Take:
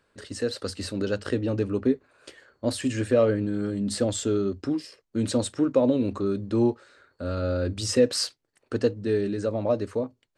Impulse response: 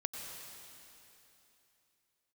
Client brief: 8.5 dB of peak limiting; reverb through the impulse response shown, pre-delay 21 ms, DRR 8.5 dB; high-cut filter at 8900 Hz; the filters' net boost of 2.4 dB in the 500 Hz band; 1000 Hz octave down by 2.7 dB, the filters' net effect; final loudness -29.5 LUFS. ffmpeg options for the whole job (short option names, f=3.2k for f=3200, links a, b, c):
-filter_complex "[0:a]lowpass=8.9k,equalizer=f=500:t=o:g=4,equalizer=f=1k:t=o:g=-5.5,alimiter=limit=-16dB:level=0:latency=1,asplit=2[a][b];[1:a]atrim=start_sample=2205,adelay=21[c];[b][c]afir=irnorm=-1:irlink=0,volume=-9.5dB[d];[a][d]amix=inputs=2:normalize=0,volume=-2.5dB"